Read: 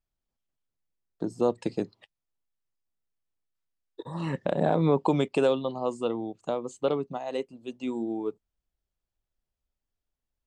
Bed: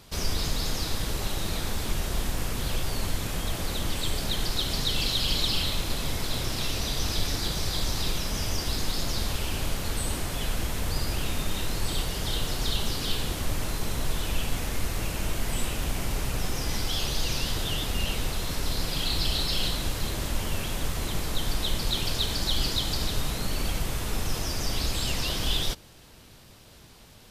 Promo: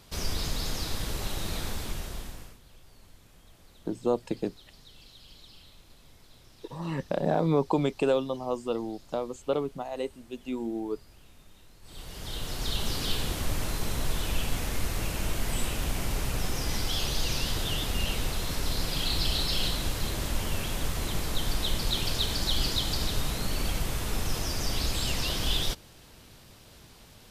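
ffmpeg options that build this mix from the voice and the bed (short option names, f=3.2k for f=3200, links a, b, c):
-filter_complex "[0:a]adelay=2650,volume=-1.5dB[a];[1:a]volume=22dB,afade=t=out:st=1.64:d=0.95:silence=0.0707946,afade=t=in:st=11.82:d=1.15:silence=0.0562341[b];[a][b]amix=inputs=2:normalize=0"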